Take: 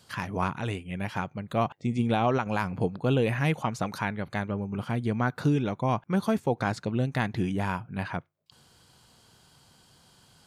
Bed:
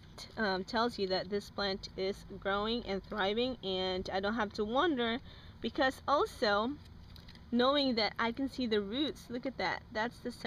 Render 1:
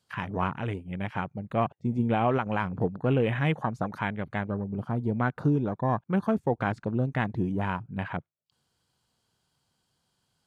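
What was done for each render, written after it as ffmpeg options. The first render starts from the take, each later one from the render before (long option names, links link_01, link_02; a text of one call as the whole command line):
ffmpeg -i in.wav -af "afwtdn=0.0126" out.wav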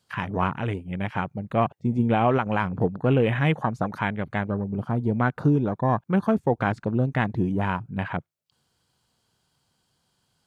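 ffmpeg -i in.wav -af "volume=4dB" out.wav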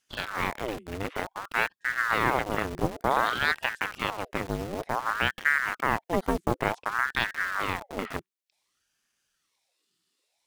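ffmpeg -i in.wav -filter_complex "[0:a]acrossover=split=100|1300[link_01][link_02][link_03];[link_02]acrusher=bits=3:dc=4:mix=0:aa=0.000001[link_04];[link_01][link_04][link_03]amix=inputs=3:normalize=0,aeval=exprs='val(0)*sin(2*PI*1000*n/s+1000*0.75/0.55*sin(2*PI*0.55*n/s))':channel_layout=same" out.wav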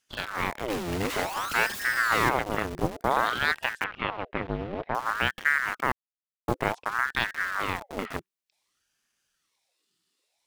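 ffmpeg -i in.wav -filter_complex "[0:a]asettb=1/sr,asplit=3[link_01][link_02][link_03];[link_01]atrim=end=0.704[link_04];[link_02]atrim=start=0.7:end=2.29,asetpts=PTS-STARTPTS,afade=type=in:duration=0.004:curve=qsin,afade=type=out:start_time=1.586:duration=0.004:curve=qsin,aeval=exprs='val(0)+0.5*0.0398*sgn(val(0))':channel_layout=same[link_05];[link_03]atrim=start=2.286[link_06];[link_04][link_05]acrossfade=duration=0.004:curve1=hsin:curve2=qsin[link_07];[link_07][link_06]acrossfade=duration=0.004:curve1=qsin:curve2=hsin,asettb=1/sr,asplit=3[link_08][link_09][link_10];[link_08]atrim=end=3.844[link_11];[link_09]atrim=start=3.84:end=4.95,asetpts=PTS-STARTPTS,afade=type=in:duration=0.004:curve=qsin,afade=type=out:start_time=1.106:duration=0.004:curve=qsin,lowpass=frequency=3300:width=0.5412,lowpass=frequency=3300:width=1.3066[link_12];[link_10]atrim=start=4.946[link_13];[link_11][link_12]acrossfade=duration=0.004:curve1=hsin:curve2=qsin[link_14];[link_14][link_13]acrossfade=duration=0.004:curve1=qsin:curve2=hsin,asplit=3[link_15][link_16][link_17];[link_15]atrim=end=5.92,asetpts=PTS-STARTPTS,afade=type=out:start_time=5.916:duration=0.004:curve=hsin[link_18];[link_16]atrim=start=5.92:end=6.48,asetpts=PTS-STARTPTS,volume=0[link_19];[link_17]atrim=start=6.48,asetpts=PTS-STARTPTS,afade=type=in:duration=0.004:curve=hsin[link_20];[link_18][link_19][link_20]concat=n=3:v=0:a=1" out.wav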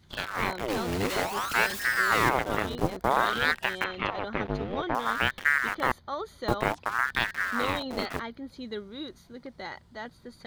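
ffmpeg -i in.wav -i bed.wav -filter_complex "[1:a]volume=-4.5dB[link_01];[0:a][link_01]amix=inputs=2:normalize=0" out.wav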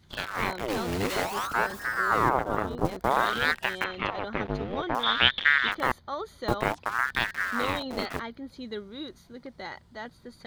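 ffmpeg -i in.wav -filter_complex "[0:a]asettb=1/sr,asplit=3[link_01][link_02][link_03];[link_01]atrim=end=1.474[link_04];[link_02]atrim=start=1.47:end=2.85,asetpts=PTS-STARTPTS,afade=type=in:duration=0.004:curve=qsin,afade=type=out:start_time=1.376:duration=0.004:curve=qsin,highshelf=frequency=1700:width_type=q:width=1.5:gain=-9[link_05];[link_03]atrim=start=2.846[link_06];[link_04][link_05]acrossfade=duration=0.004:curve1=hsin:curve2=qsin[link_07];[link_07][link_06]acrossfade=duration=0.004:curve1=qsin:curve2=hsin,asettb=1/sr,asplit=3[link_08][link_09][link_10];[link_08]atrim=end=5.034[link_11];[link_09]atrim=start=5.03:end=5.72,asetpts=PTS-STARTPTS,afade=type=in:duration=0.004:curve=qsin,afade=type=out:start_time=0.686:duration=0.004:curve=qsin,lowpass=frequency=3500:width_type=q:width=10[link_12];[link_10]atrim=start=5.716[link_13];[link_11][link_12]acrossfade=duration=0.004:curve1=hsin:curve2=qsin[link_14];[link_14][link_13]acrossfade=duration=0.004:curve1=qsin:curve2=hsin" out.wav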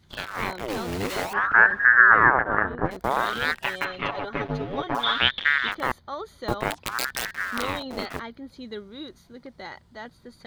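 ffmpeg -i in.wav -filter_complex "[0:a]asettb=1/sr,asplit=3[link_01][link_02][link_03];[link_01]atrim=end=1.334[link_04];[link_02]atrim=start=1.33:end=2.91,asetpts=PTS-STARTPTS,afade=type=in:duration=0.004:curve=qsin,afade=type=out:start_time=1.576:duration=0.004:curve=qsin,lowpass=frequency=1700:width_type=q:width=8.9[link_05];[link_03]atrim=start=2.906[link_06];[link_04][link_05]acrossfade=duration=0.004:curve1=hsin:curve2=qsin[link_07];[link_07][link_06]acrossfade=duration=0.004:curve1=qsin:curve2=hsin,asettb=1/sr,asplit=3[link_08][link_09][link_10];[link_08]atrim=end=3.644[link_11];[link_09]atrim=start=3.64:end=5.18,asetpts=PTS-STARTPTS,afade=type=in:duration=0.004:curve=qsin,afade=type=out:start_time=1.536:duration=0.004:curve=qsin,aecho=1:1:7.1:0.73,atrim=end_sample=67914[link_12];[link_10]atrim=start=5.176[link_13];[link_11][link_12]acrossfade=duration=0.004:curve1=hsin:curve2=qsin[link_14];[link_14][link_13]acrossfade=duration=0.004:curve1=qsin:curve2=hsin,asettb=1/sr,asplit=3[link_15][link_16][link_17];[link_15]atrim=end=6.704[link_18];[link_16]atrim=start=6.7:end=7.62,asetpts=PTS-STARTPTS,afade=type=in:duration=0.004:curve=qsin,afade=type=out:start_time=0.916:duration=0.004:curve=qsin,aeval=exprs='(mod(5.96*val(0)+1,2)-1)/5.96':channel_layout=same[link_19];[link_17]atrim=start=7.616[link_20];[link_18][link_19]acrossfade=duration=0.004:curve1=hsin:curve2=qsin[link_21];[link_21][link_20]acrossfade=duration=0.004:curve1=qsin:curve2=hsin" out.wav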